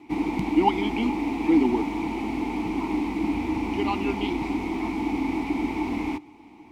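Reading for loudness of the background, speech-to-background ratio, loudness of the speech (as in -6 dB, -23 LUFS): -28.0 LUFS, 1.5 dB, -26.5 LUFS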